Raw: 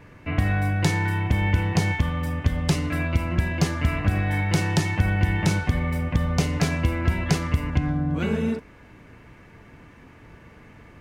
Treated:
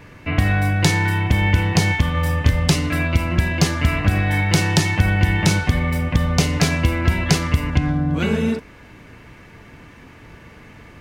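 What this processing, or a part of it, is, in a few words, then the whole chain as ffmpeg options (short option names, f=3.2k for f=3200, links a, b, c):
presence and air boost: -filter_complex "[0:a]equalizer=f=4.1k:t=o:w=1.8:g=4.5,highshelf=f=10k:g=5.5,asettb=1/sr,asplit=3[a][b][c];[a]atrim=end=2.124[d];[b]atrim=start=2.12:end=2.66,asetpts=PTS-STARTPTS,afade=t=in:d=0.004:c=qsin,afade=t=out:st=0.536:d=0.004:c=qsin,asplit=2[e][f];[f]adelay=26,volume=-3dB[g];[e][g]amix=inputs=2:normalize=0,atrim=end_sample=23814[h];[c]atrim=start=2.656[i];[d][h]acrossfade=d=0.004:c1=hsin:c2=qsin[j];[j][i]acrossfade=d=0.004:c1=qsin:c2=hsin,volume=4.5dB"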